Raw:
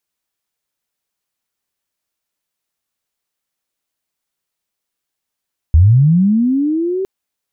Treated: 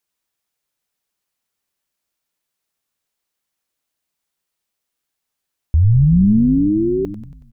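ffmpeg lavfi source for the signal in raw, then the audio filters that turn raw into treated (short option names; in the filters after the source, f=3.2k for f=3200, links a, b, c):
-f lavfi -i "aevalsrc='pow(10,(-4-12*t/1.31)/20)*sin(2*PI*(72*t+318*t*t/(2*1.31)))':d=1.31:s=44100"
-filter_complex "[0:a]alimiter=limit=-8.5dB:level=0:latency=1:release=316,asplit=2[a][b];[b]asplit=7[c][d][e][f][g][h][i];[c]adelay=93,afreqshift=-81,volume=-11dB[j];[d]adelay=186,afreqshift=-162,volume=-15.6dB[k];[e]adelay=279,afreqshift=-243,volume=-20.2dB[l];[f]adelay=372,afreqshift=-324,volume=-24.7dB[m];[g]adelay=465,afreqshift=-405,volume=-29.3dB[n];[h]adelay=558,afreqshift=-486,volume=-33.9dB[o];[i]adelay=651,afreqshift=-567,volume=-38.5dB[p];[j][k][l][m][n][o][p]amix=inputs=7:normalize=0[q];[a][q]amix=inputs=2:normalize=0"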